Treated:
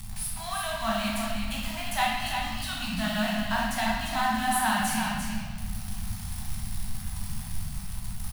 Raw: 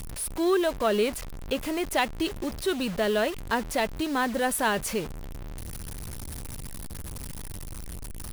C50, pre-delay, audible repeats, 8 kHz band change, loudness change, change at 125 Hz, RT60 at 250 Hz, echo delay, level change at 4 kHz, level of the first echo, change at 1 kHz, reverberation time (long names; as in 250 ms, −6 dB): −2.0 dB, 14 ms, 1, +1.0 dB, −1.5 dB, +4.0 dB, 2.5 s, 348 ms, +2.5 dB, −6.0 dB, +2.5 dB, 1.5 s